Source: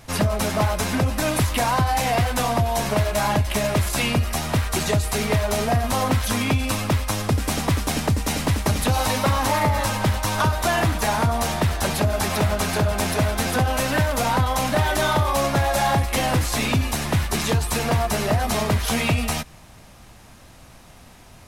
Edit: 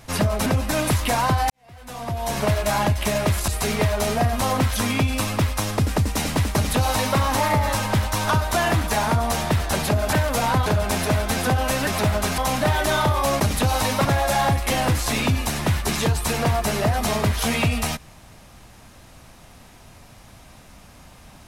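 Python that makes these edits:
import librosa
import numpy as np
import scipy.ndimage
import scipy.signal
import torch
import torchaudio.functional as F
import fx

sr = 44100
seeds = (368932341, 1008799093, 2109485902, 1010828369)

y = fx.edit(x, sr, fx.cut(start_s=0.46, length_s=0.49),
    fx.fade_in_span(start_s=1.99, length_s=0.92, curve='qua'),
    fx.cut(start_s=3.97, length_s=1.02),
    fx.cut(start_s=7.47, length_s=0.6),
    fx.duplicate(start_s=8.65, length_s=0.65, to_s=15.51),
    fx.swap(start_s=12.24, length_s=0.51, other_s=13.96, other_length_s=0.53), tone=tone)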